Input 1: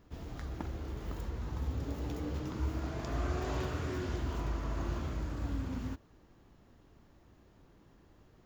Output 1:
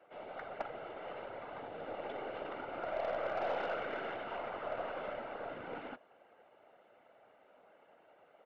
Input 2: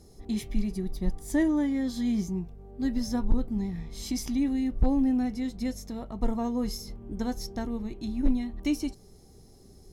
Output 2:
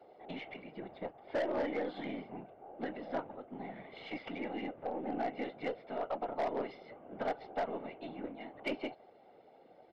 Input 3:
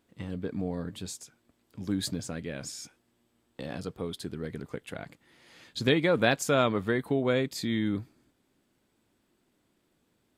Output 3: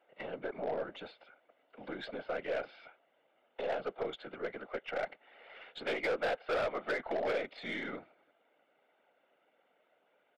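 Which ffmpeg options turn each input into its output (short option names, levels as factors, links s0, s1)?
-af "equalizer=f=600:w=1.8:g=5,aecho=1:1:1.4:0.62,acompressor=threshold=0.0447:ratio=8,afreqshift=65,afftfilt=real='hypot(re,im)*cos(2*PI*random(0))':imag='hypot(re,im)*sin(2*PI*random(1))':win_size=512:overlap=0.75,highpass=f=490:t=q:w=0.5412,highpass=f=490:t=q:w=1.307,lowpass=f=3100:t=q:w=0.5176,lowpass=f=3100:t=q:w=0.7071,lowpass=f=3100:t=q:w=1.932,afreqshift=-95,aresample=11025,asoftclip=type=hard:threshold=0.0133,aresample=44100,aeval=exprs='0.0188*(cos(1*acos(clip(val(0)/0.0188,-1,1)))-cos(1*PI/2))+0.000668*(cos(6*acos(clip(val(0)/0.0188,-1,1)))-cos(6*PI/2))':c=same,volume=2.66"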